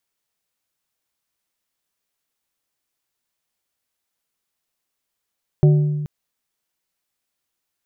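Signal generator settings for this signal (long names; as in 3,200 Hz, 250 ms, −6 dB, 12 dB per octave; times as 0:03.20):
struck glass plate, length 0.43 s, lowest mode 149 Hz, modes 4, decay 1.56 s, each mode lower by 9 dB, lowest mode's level −8 dB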